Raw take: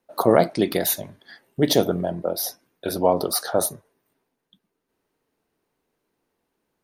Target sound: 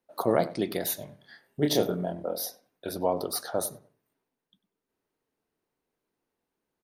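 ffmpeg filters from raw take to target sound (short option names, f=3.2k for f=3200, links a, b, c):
-filter_complex "[0:a]asettb=1/sr,asplit=3[a][b][c];[a]atrim=end=0.994[d];[b]atrim=start=0.99:end=2.46,asetpts=PTS-STARTPTS,afade=t=in:d=0.004:c=qsin,afade=t=out:st=1.466:d=0.004:c=qsin,asplit=2[e][f];[f]adelay=27,volume=-4dB[g];[e][g]amix=inputs=2:normalize=0,atrim=end_sample=64827[h];[c]atrim=start=2.456[i];[d][h]acrossfade=d=0.004:c1=hsin:c2=qsin[j];[j][i]acrossfade=d=0.004:c1=qsin:c2=hsin,asplit=2[k][l];[l]adelay=96,lowpass=f=2k:p=1,volume=-16dB,asplit=2[m][n];[n]adelay=96,lowpass=f=2k:p=1,volume=0.29,asplit=2[o][p];[p]adelay=96,lowpass=f=2k:p=1,volume=0.29[q];[k][m][o][q]amix=inputs=4:normalize=0,volume=-8dB"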